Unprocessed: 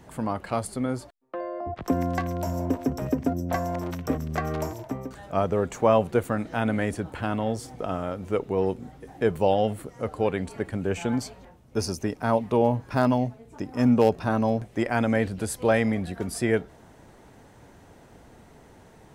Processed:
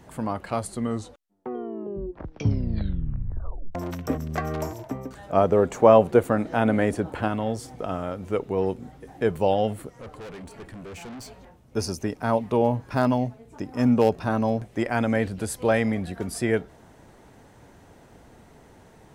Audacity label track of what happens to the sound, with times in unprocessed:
0.580000	0.580000	tape stop 3.17 s
5.290000	7.280000	parametric band 480 Hz +6 dB 2.7 octaves
9.890000	11.280000	tube saturation drive 37 dB, bias 0.5

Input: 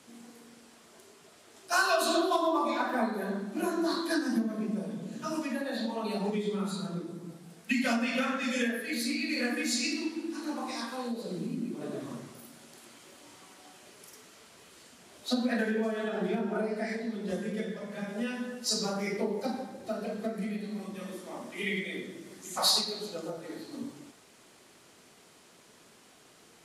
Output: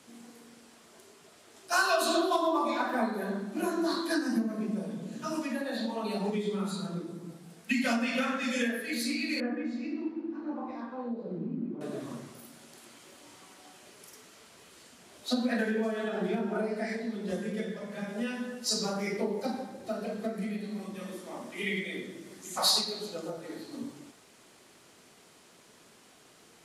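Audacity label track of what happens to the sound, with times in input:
4.150000	4.610000	notch filter 3,400 Hz, Q 7.2
9.400000	11.810000	Bessel low-pass filter 910 Hz

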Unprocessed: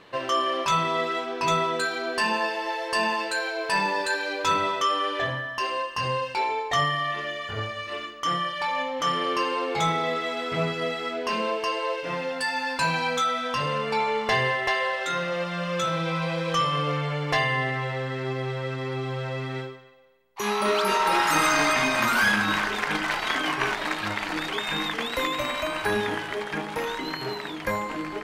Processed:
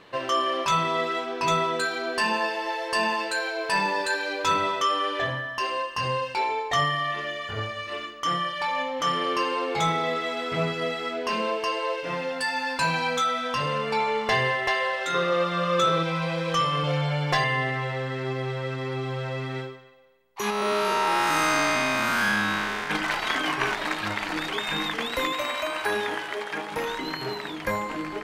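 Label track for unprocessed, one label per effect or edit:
15.140000	16.030000	hollow resonant body resonances 420/1,200/3,600 Hz, height 16 dB
16.830000	17.440000	comb filter 5.5 ms, depth 76%
20.500000	22.900000	spectrum smeared in time width 183 ms
25.320000	26.720000	bass and treble bass −13 dB, treble 0 dB

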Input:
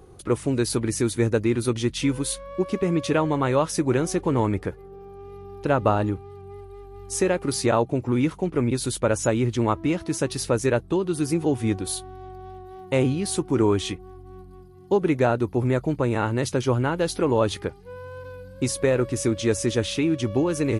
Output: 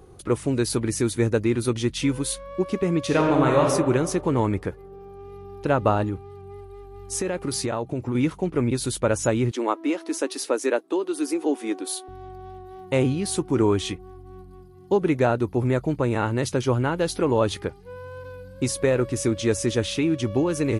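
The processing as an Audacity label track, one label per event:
3.050000	3.620000	thrown reverb, RT60 1.5 s, DRR 0 dB
6.030000	8.150000	downward compressor, threshold −22 dBFS
9.510000	12.080000	elliptic high-pass filter 270 Hz, stop band 60 dB

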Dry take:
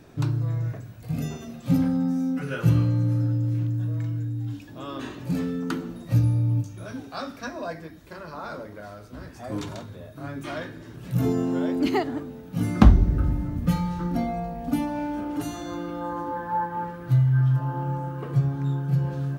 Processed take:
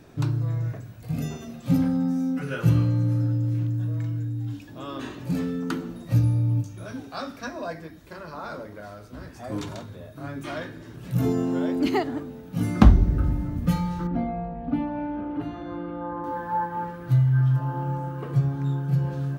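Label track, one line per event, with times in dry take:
14.070000	16.240000	high-frequency loss of the air 440 metres

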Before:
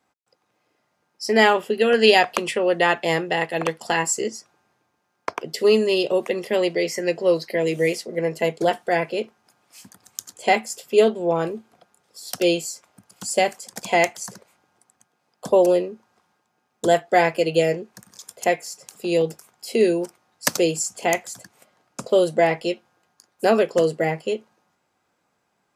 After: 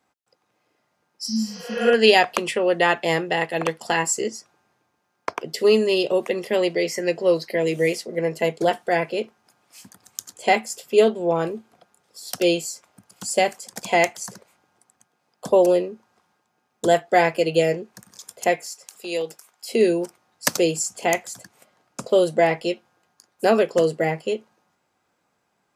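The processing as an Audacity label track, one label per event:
1.290000	1.870000	healed spectral selection 280–6,600 Hz
18.660000	19.690000	high-pass filter 840 Hz 6 dB per octave

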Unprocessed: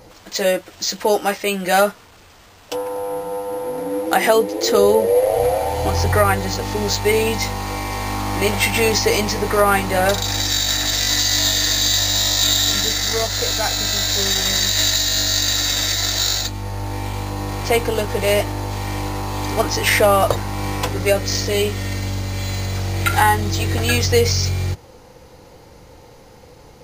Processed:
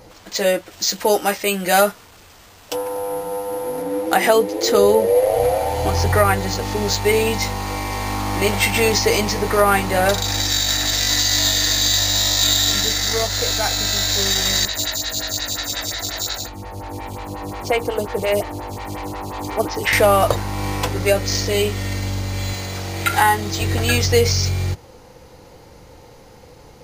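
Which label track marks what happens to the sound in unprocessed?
0.710000	3.820000	high-shelf EQ 7,100 Hz +6.5 dB
14.650000	19.930000	phaser with staggered stages 5.6 Hz
22.530000	23.610000	high-pass filter 170 Hz 6 dB per octave

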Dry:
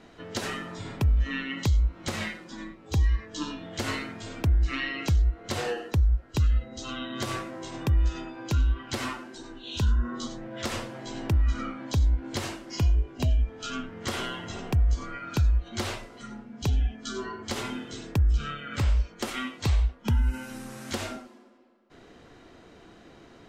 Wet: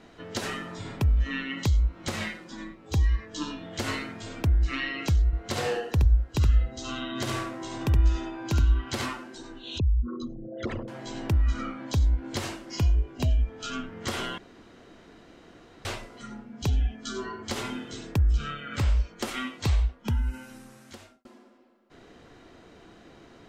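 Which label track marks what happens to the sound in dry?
5.260000	9.060000	single-tap delay 70 ms −4.5 dB
9.780000	10.880000	spectral envelope exaggerated exponent 3
14.380000	15.850000	fill with room tone
19.730000	21.250000	fade out

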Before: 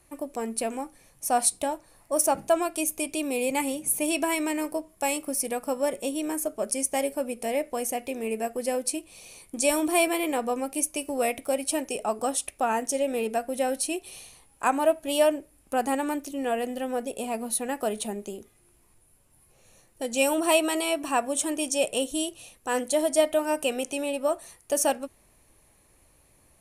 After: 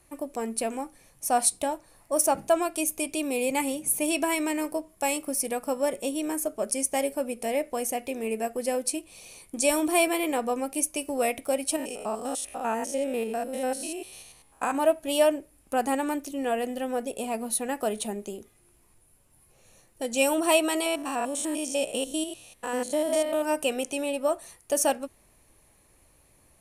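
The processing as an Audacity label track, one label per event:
11.760000	14.750000	spectrum averaged block by block every 100 ms
20.860000	23.430000	spectrum averaged block by block every 100 ms

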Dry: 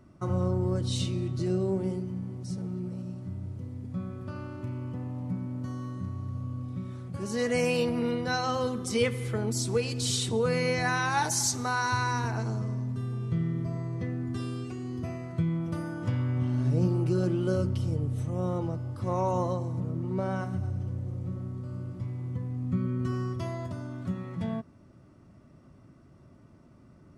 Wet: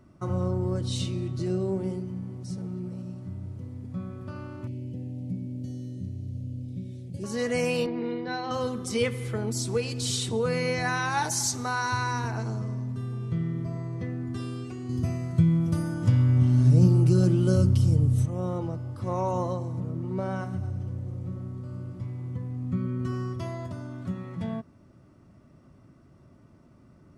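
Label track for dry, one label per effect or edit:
4.670000	7.240000	Butterworth band-reject 1,200 Hz, Q 0.56
7.860000	8.510000	loudspeaker in its box 200–3,800 Hz, peaks and dips at 210 Hz −5 dB, 350 Hz +8 dB, 580 Hz −9 dB, 1,300 Hz −10 dB, 2,800 Hz −7 dB
14.890000	18.260000	bass and treble bass +9 dB, treble +10 dB

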